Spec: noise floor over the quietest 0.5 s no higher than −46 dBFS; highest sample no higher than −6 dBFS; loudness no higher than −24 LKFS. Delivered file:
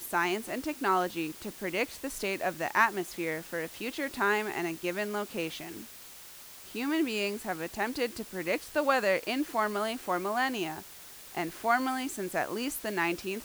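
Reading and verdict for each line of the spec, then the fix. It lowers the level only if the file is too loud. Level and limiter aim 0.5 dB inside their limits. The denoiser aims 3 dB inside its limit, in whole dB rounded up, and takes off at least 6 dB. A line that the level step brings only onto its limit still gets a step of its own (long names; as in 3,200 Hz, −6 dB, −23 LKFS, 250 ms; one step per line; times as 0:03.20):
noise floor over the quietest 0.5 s −49 dBFS: in spec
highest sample −10.5 dBFS: in spec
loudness −31.5 LKFS: in spec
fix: no processing needed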